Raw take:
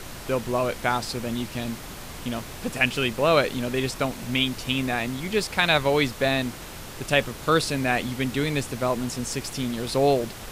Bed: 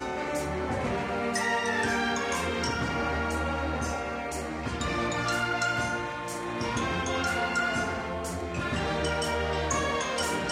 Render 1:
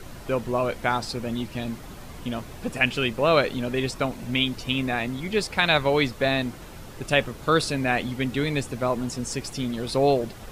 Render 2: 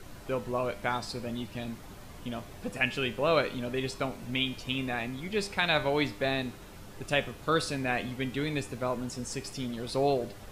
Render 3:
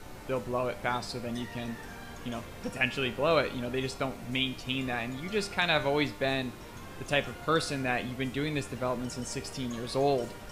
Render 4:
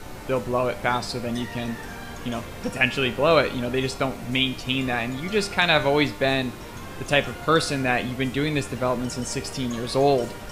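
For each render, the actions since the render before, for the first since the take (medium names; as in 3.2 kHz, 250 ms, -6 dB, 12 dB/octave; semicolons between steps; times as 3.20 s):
noise reduction 8 dB, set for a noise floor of -39 dBFS
feedback comb 100 Hz, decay 0.5 s, harmonics all, mix 60%
add bed -19 dB
trim +7.5 dB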